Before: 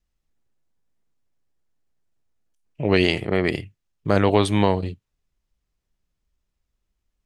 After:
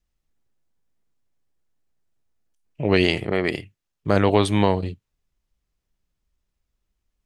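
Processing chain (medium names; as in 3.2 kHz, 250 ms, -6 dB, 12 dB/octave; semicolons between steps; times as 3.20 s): 3.32–4.07 s: bass shelf 180 Hz -7 dB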